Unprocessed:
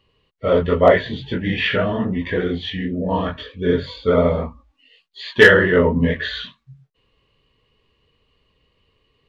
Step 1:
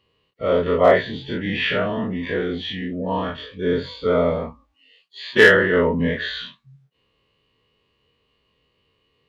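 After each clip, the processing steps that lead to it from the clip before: every event in the spectrogram widened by 60 ms; high-pass 110 Hz 6 dB/octave; trim -5.5 dB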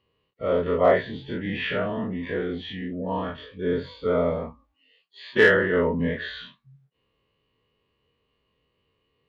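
treble shelf 3.9 kHz -10.5 dB; trim -4 dB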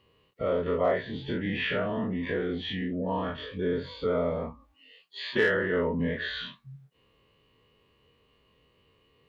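compression 2:1, threshold -41 dBFS, peak gain reduction 15.5 dB; trim +7 dB

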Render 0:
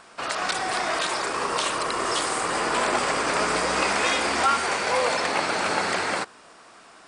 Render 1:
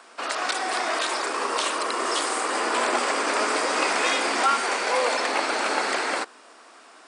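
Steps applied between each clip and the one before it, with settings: steep high-pass 230 Hz 48 dB/octave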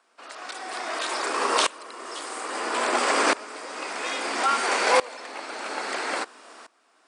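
sawtooth tremolo in dB swelling 0.6 Hz, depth 22 dB; trim +5 dB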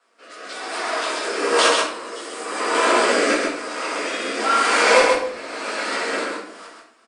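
rotary cabinet horn 1 Hz; on a send: delay 132 ms -4 dB; on the sum: simulated room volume 84 m³, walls mixed, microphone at 1.8 m; trim -1 dB

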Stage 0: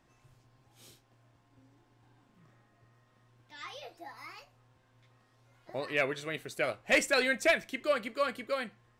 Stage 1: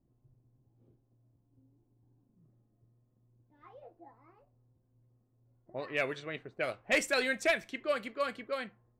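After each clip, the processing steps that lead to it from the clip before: level-controlled noise filter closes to 310 Hz, open at -27.5 dBFS; trim -2.5 dB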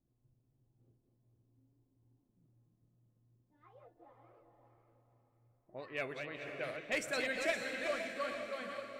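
chunks repeated in reverse 197 ms, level -5.5 dB; echo that smears into a reverb 494 ms, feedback 40%, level -5.5 dB; trim -7.5 dB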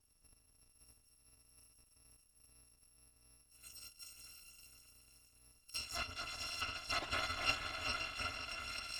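bit-reversed sample order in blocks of 256 samples; low-pass that closes with the level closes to 2.4 kHz, closed at -37.5 dBFS; trim +8.5 dB

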